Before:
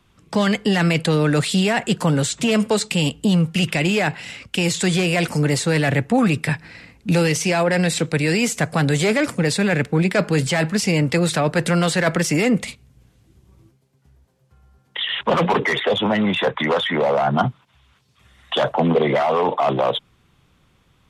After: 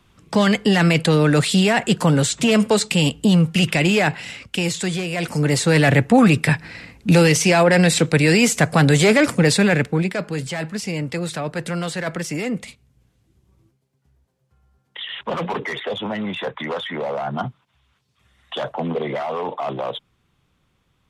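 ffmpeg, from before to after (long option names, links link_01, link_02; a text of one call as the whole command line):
ffmpeg -i in.wav -af "volume=13dB,afade=type=out:start_time=4.08:duration=1.01:silence=0.354813,afade=type=in:start_time=5.09:duration=0.74:silence=0.281838,afade=type=out:start_time=9.54:duration=0.66:silence=0.281838" out.wav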